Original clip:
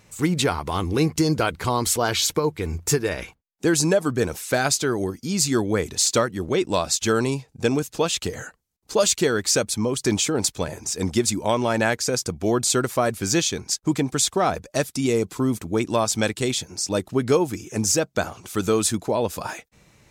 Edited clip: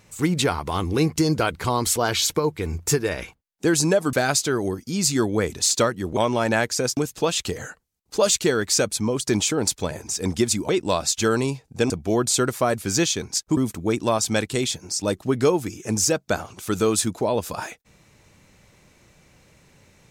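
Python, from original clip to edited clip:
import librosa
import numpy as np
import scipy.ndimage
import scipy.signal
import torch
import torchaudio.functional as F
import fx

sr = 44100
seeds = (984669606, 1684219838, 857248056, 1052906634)

y = fx.edit(x, sr, fx.cut(start_s=4.13, length_s=0.36),
    fx.swap(start_s=6.53, length_s=1.21, other_s=11.46, other_length_s=0.8),
    fx.cut(start_s=13.93, length_s=1.51), tone=tone)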